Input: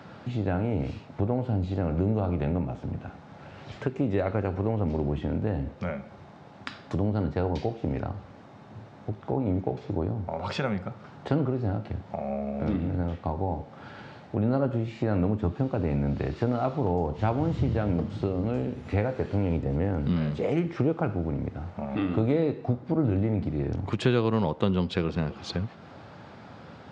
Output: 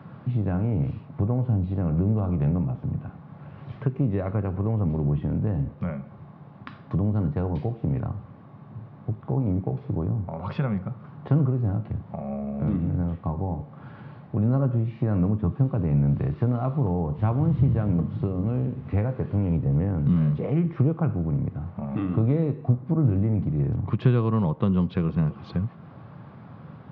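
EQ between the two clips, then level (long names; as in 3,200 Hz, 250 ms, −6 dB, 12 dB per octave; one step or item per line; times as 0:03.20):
Gaussian smoothing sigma 2.4 samples
parametric band 140 Hz +13 dB 1.3 octaves
parametric band 1,100 Hz +9 dB 0.21 octaves
−4.5 dB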